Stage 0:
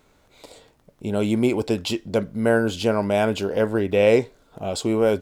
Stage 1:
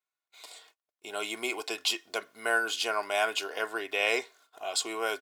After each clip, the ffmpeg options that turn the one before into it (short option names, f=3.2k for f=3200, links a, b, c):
-af "highpass=1.1k,agate=range=-30dB:threshold=-60dB:ratio=16:detection=peak,aecho=1:1:2.8:0.6"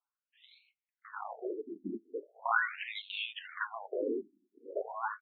-af "aeval=exprs='if(lt(val(0),0),0.447*val(0),val(0))':c=same,acrusher=samples=17:mix=1:aa=0.000001:lfo=1:lforange=10.2:lforate=1,afftfilt=real='re*between(b*sr/1024,270*pow(3100/270,0.5+0.5*sin(2*PI*0.4*pts/sr))/1.41,270*pow(3100/270,0.5+0.5*sin(2*PI*0.4*pts/sr))*1.41)':imag='im*between(b*sr/1024,270*pow(3100/270,0.5+0.5*sin(2*PI*0.4*pts/sr))/1.41,270*pow(3100/270,0.5+0.5*sin(2*PI*0.4*pts/sr))*1.41)':win_size=1024:overlap=0.75,volume=3dB"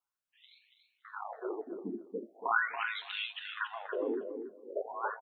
-af "aecho=1:1:282|564|846:0.422|0.0843|0.0169"